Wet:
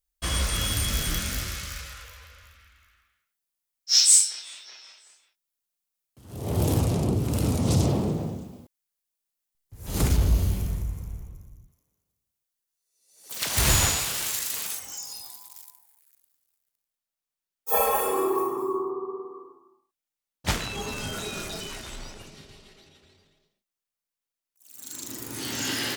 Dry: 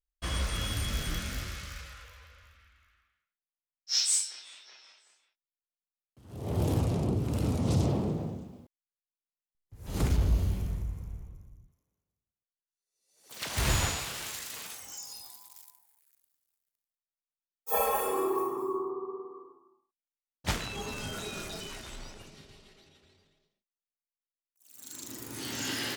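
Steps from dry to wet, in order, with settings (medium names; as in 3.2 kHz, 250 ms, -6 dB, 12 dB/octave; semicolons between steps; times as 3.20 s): treble shelf 5.6 kHz +9.5 dB, from 14.79 s +2 dB; trim +4.5 dB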